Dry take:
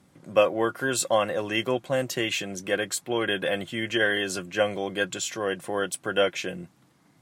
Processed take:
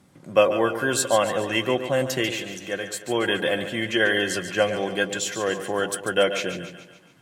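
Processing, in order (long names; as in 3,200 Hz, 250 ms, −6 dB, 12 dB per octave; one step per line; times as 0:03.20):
0:02.31–0:03.02: tuned comb filter 120 Hz, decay 0.9 s, harmonics odd, mix 50%
echo with a time of its own for lows and highs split 710 Hz, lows 107 ms, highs 142 ms, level −9.5 dB
level +2.5 dB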